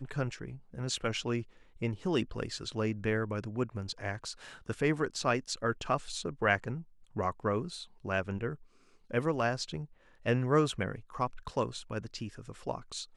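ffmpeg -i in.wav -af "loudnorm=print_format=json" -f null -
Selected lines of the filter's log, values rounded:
"input_i" : "-34.2",
"input_tp" : "-12.2",
"input_lra" : "2.0",
"input_thresh" : "-44.4",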